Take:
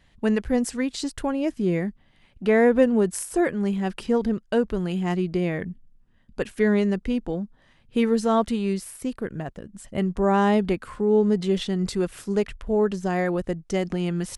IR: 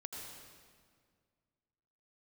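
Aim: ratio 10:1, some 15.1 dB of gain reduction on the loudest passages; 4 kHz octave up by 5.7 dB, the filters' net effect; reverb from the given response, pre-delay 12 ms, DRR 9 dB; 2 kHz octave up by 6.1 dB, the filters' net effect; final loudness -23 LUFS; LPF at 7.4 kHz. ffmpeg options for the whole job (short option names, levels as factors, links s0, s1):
-filter_complex "[0:a]lowpass=7400,equalizer=f=2000:t=o:g=6,equalizer=f=4000:t=o:g=5.5,acompressor=threshold=0.0398:ratio=10,asplit=2[s0][s1];[1:a]atrim=start_sample=2205,adelay=12[s2];[s1][s2]afir=irnorm=-1:irlink=0,volume=0.447[s3];[s0][s3]amix=inputs=2:normalize=0,volume=3.16"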